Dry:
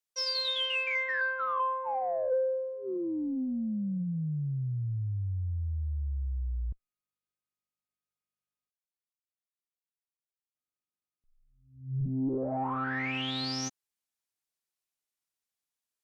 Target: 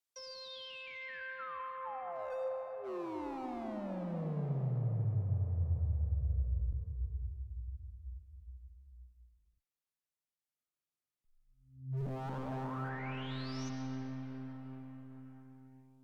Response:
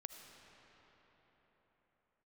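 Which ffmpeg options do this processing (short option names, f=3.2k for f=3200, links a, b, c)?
-filter_complex "[0:a]asettb=1/sr,asplit=3[a][b][c];[a]atrim=end=11.974[d];[b]atrim=start=11.97:end=12.89,asetpts=PTS-STARTPTS,afade=t=in:d=0.004:c=qsin,afade=t=out:st=0.916:d=0.004:c=qsin,aeval=exprs='val(0)+0.5*0.00266*sgn(val(0))':c=same[e];[c]atrim=start=12.886[f];[d][e]acrossfade=d=0.004:c1=hsin:c2=qsin[g];[g][f]acrossfade=d=0.004:c1=qsin:c2=hsin,acrossover=split=310[h][i];[i]acompressor=threshold=-39dB:ratio=10[j];[h][j]amix=inputs=2:normalize=0,acrossover=split=120|940|1100[k][l][m][n];[l]aeval=exprs='0.0168*(abs(mod(val(0)/0.0168+3,4)-2)-1)':c=same[o];[n]alimiter=level_in=18dB:limit=-24dB:level=0:latency=1,volume=-18dB[p];[k][o][m][p]amix=inputs=4:normalize=0[q];[1:a]atrim=start_sample=2205,asetrate=33516,aresample=44100[r];[q][r]afir=irnorm=-1:irlink=0,volume=2dB"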